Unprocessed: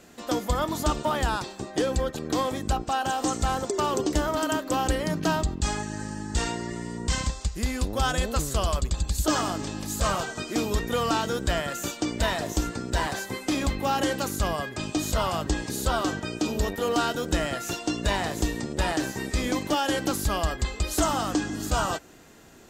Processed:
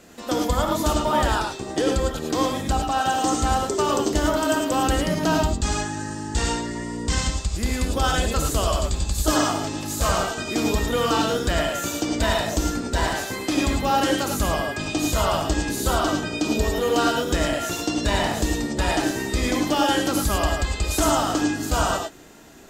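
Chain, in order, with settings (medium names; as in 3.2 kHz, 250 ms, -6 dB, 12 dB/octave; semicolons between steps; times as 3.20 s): gated-style reverb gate 130 ms rising, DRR 1.5 dB; trim +2 dB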